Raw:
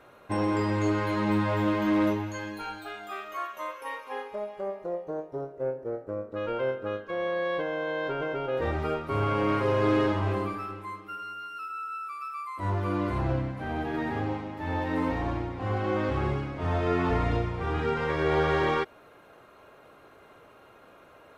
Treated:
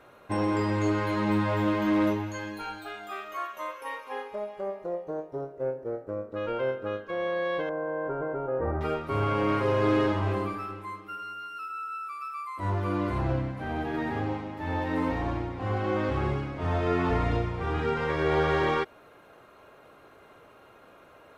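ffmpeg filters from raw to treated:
-filter_complex "[0:a]asettb=1/sr,asplit=3[a][b][c];[a]atrim=end=7.694[d];[b]atrim=start=7.69:end=8.81,asetpts=PTS-STARTPTS,afade=t=in:d=0.004:c=qsin,afade=t=out:st=1.116:d=0.004:c=qsin,lowpass=f=1.4k:w=0.5412,lowpass=f=1.4k:w=1.3066[e];[c]atrim=start=8.806[f];[d][e]acrossfade=d=0.004:c1=hsin:c2=qsin[g];[g][f]acrossfade=d=0.004:c1=qsin:c2=hsin"

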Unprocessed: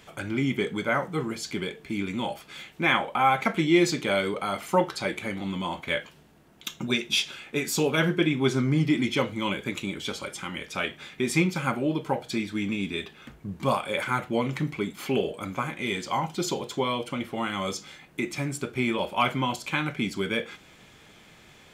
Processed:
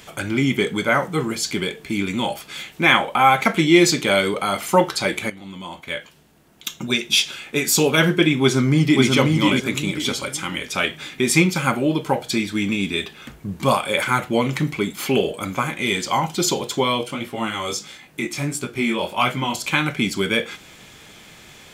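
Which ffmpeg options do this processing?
-filter_complex "[0:a]asplit=2[a][b];[b]afade=t=in:st=8.42:d=0.01,afade=t=out:st=9.05:d=0.01,aecho=0:1:540|1080|1620|2160:0.749894|0.224968|0.0674905|0.0202471[c];[a][c]amix=inputs=2:normalize=0,asplit=3[d][e][f];[d]afade=t=out:st=17.01:d=0.02[g];[e]flanger=delay=16:depth=7.5:speed=1.5,afade=t=in:st=17.01:d=0.02,afade=t=out:st=19.55:d=0.02[h];[f]afade=t=in:st=19.55:d=0.02[i];[g][h][i]amix=inputs=3:normalize=0,asplit=2[j][k];[j]atrim=end=5.3,asetpts=PTS-STARTPTS,afade=t=out:st=5.296:d=0.004:c=hsin:silence=0.199526[l];[k]atrim=start=5.3,asetpts=PTS-STARTPTS,afade=t=in:d=2.58:silence=0.199526[m];[l][m]concat=n=2:v=0:a=1,highshelf=f=3.8k:g=7,volume=6.5dB"

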